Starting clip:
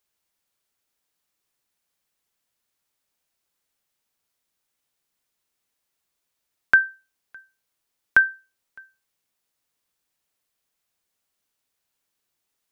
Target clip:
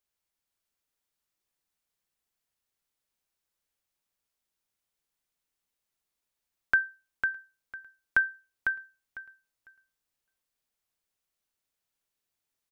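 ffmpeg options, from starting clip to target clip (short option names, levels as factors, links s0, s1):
-af "lowshelf=f=66:g=8,aecho=1:1:501|1002|1503:0.562|0.107|0.0203,volume=0.398"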